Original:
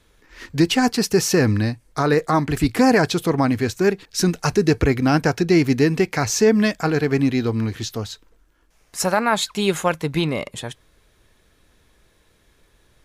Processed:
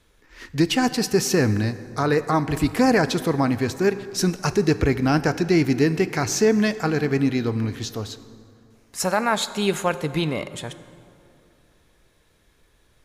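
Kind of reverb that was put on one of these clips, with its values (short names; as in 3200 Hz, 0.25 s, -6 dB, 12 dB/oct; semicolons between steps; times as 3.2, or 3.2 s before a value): plate-style reverb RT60 2.8 s, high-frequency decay 0.55×, DRR 13 dB; gain -2.5 dB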